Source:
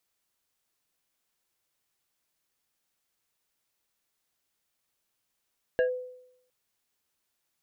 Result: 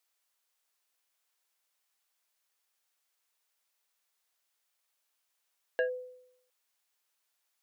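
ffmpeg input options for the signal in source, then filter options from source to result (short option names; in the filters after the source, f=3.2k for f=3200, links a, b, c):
-f lavfi -i "aevalsrc='0.112*pow(10,-3*t/0.77)*sin(2*PI*503*t+0.71*clip(1-t/0.11,0,1)*sin(2*PI*2.27*503*t))':d=0.71:s=44100"
-af "highpass=590"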